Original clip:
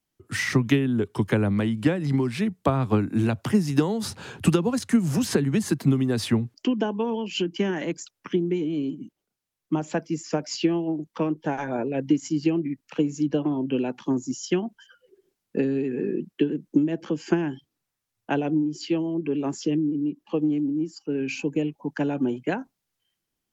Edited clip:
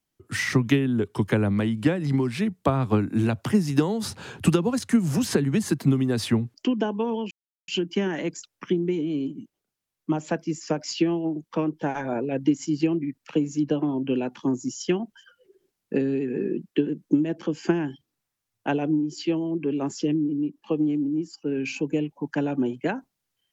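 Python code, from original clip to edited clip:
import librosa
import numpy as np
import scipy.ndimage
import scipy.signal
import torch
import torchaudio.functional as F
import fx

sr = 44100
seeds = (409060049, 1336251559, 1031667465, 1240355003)

y = fx.edit(x, sr, fx.insert_silence(at_s=7.31, length_s=0.37), tone=tone)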